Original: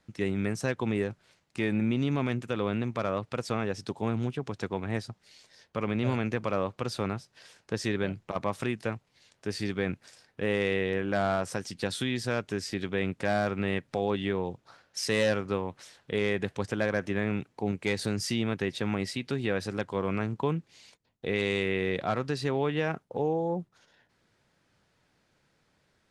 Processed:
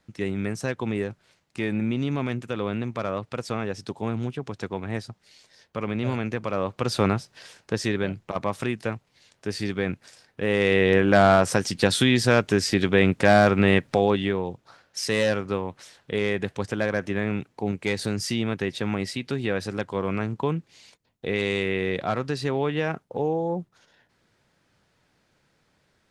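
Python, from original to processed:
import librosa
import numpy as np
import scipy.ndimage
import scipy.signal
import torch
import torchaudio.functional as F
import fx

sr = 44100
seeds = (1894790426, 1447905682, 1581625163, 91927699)

y = fx.gain(x, sr, db=fx.line((6.52, 1.5), (7.05, 10.0), (8.01, 3.5), (10.42, 3.5), (10.93, 11.0), (13.85, 11.0), (14.42, 3.0)))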